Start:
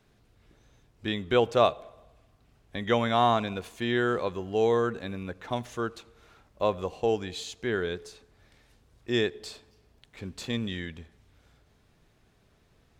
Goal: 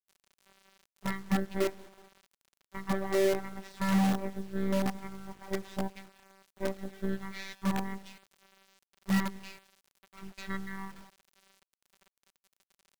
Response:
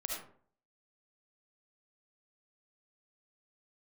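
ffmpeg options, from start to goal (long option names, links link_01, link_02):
-filter_complex "[0:a]aeval=exprs='if(lt(val(0),0),0.708*val(0),val(0))':channel_layout=same,aecho=1:1:5.6:0.7,alimiter=limit=-15.5dB:level=0:latency=1:release=479,asplit=2[link_01][link_02];[link_02]asetrate=37084,aresample=44100,atempo=1.18921,volume=-14dB[link_03];[link_01][link_03]amix=inputs=2:normalize=0,afftfilt=real='hypot(re,im)*cos(PI*b)':imag='0':win_size=512:overlap=0.75,asplit=2[link_04][link_05];[link_05]adelay=188,lowpass=frequency=2200:poles=1,volume=-20.5dB,asplit=2[link_06][link_07];[link_07]adelay=188,lowpass=frequency=2200:poles=1,volume=0.18[link_08];[link_04][link_06][link_08]amix=inputs=3:normalize=0,asetrate=24750,aresample=44100,atempo=1.7818,acrusher=bits=6:dc=4:mix=0:aa=0.000001"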